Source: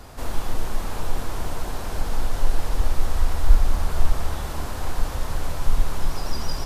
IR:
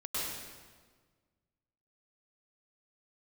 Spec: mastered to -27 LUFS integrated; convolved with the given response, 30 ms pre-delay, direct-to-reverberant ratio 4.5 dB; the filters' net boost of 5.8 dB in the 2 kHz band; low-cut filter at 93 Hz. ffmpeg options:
-filter_complex "[0:a]highpass=93,equalizer=f=2000:t=o:g=7.5,asplit=2[s0][s1];[1:a]atrim=start_sample=2205,adelay=30[s2];[s1][s2]afir=irnorm=-1:irlink=0,volume=0.355[s3];[s0][s3]amix=inputs=2:normalize=0,volume=1.58"

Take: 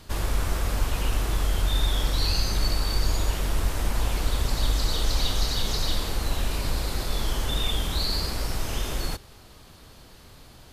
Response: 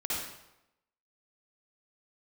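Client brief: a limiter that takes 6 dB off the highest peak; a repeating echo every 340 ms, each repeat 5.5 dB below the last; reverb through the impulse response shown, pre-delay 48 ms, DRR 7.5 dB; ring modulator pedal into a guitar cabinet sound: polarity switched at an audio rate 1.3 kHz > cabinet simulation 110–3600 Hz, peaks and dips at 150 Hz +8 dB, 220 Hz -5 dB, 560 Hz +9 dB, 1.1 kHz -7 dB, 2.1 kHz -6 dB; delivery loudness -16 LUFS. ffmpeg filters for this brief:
-filter_complex "[0:a]alimiter=limit=0.141:level=0:latency=1,aecho=1:1:340|680|1020|1360|1700|2040|2380:0.531|0.281|0.149|0.079|0.0419|0.0222|0.0118,asplit=2[s0][s1];[1:a]atrim=start_sample=2205,adelay=48[s2];[s1][s2]afir=irnorm=-1:irlink=0,volume=0.211[s3];[s0][s3]amix=inputs=2:normalize=0,aeval=exprs='val(0)*sgn(sin(2*PI*1300*n/s))':c=same,highpass=110,equalizer=f=150:t=q:w=4:g=8,equalizer=f=220:t=q:w=4:g=-5,equalizer=f=560:t=q:w=4:g=9,equalizer=f=1100:t=q:w=4:g=-7,equalizer=f=2100:t=q:w=4:g=-6,lowpass=f=3600:w=0.5412,lowpass=f=3600:w=1.3066,volume=3.16"

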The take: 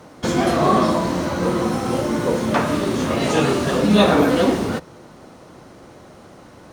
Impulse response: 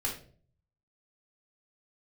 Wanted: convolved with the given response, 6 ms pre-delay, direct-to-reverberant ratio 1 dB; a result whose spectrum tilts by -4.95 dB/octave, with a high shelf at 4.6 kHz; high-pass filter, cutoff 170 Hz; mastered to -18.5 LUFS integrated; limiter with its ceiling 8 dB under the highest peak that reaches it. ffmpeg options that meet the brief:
-filter_complex "[0:a]highpass=170,highshelf=f=4600:g=-6,alimiter=limit=0.251:level=0:latency=1,asplit=2[s0][s1];[1:a]atrim=start_sample=2205,adelay=6[s2];[s1][s2]afir=irnorm=-1:irlink=0,volume=0.562[s3];[s0][s3]amix=inputs=2:normalize=0"

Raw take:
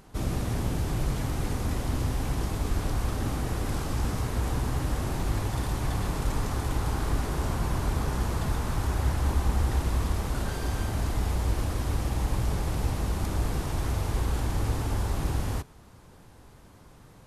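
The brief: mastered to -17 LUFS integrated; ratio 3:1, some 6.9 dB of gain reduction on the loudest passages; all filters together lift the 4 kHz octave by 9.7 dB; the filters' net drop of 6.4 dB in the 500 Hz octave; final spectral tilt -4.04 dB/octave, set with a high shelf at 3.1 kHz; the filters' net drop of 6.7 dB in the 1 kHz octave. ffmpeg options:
-af "equalizer=f=500:t=o:g=-7,equalizer=f=1000:t=o:g=-7.5,highshelf=f=3100:g=6,equalizer=f=4000:t=o:g=8,acompressor=threshold=0.0316:ratio=3,volume=7.08"

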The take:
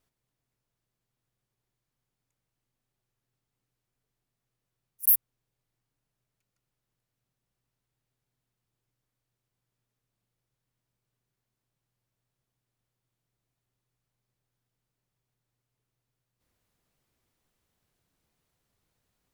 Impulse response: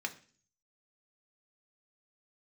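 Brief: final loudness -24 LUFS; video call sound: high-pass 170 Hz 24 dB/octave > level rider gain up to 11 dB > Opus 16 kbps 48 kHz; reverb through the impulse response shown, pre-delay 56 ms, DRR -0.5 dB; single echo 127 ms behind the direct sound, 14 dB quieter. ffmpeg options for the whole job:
-filter_complex "[0:a]aecho=1:1:127:0.2,asplit=2[s0][s1];[1:a]atrim=start_sample=2205,adelay=56[s2];[s1][s2]afir=irnorm=-1:irlink=0,volume=0.794[s3];[s0][s3]amix=inputs=2:normalize=0,highpass=f=170:w=0.5412,highpass=f=170:w=1.3066,dynaudnorm=m=3.55,volume=0.944" -ar 48000 -c:a libopus -b:a 16k

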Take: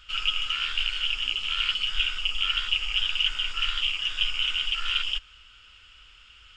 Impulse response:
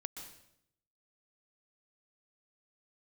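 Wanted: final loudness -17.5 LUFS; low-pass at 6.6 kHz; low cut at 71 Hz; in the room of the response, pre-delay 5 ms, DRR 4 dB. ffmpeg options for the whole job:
-filter_complex "[0:a]highpass=71,lowpass=6600,asplit=2[s0][s1];[1:a]atrim=start_sample=2205,adelay=5[s2];[s1][s2]afir=irnorm=-1:irlink=0,volume=0.841[s3];[s0][s3]amix=inputs=2:normalize=0,volume=2.11"

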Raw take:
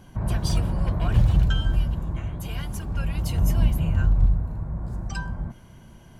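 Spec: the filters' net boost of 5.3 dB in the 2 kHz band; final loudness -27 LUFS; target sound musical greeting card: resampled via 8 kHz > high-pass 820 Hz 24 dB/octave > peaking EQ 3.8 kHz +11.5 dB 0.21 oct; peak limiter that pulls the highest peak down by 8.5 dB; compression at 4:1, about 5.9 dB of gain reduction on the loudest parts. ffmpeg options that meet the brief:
-af "equalizer=f=2000:t=o:g=7.5,acompressor=threshold=0.1:ratio=4,alimiter=limit=0.0794:level=0:latency=1,aresample=8000,aresample=44100,highpass=f=820:w=0.5412,highpass=f=820:w=1.3066,equalizer=f=3800:t=o:w=0.21:g=11.5,volume=5.62"

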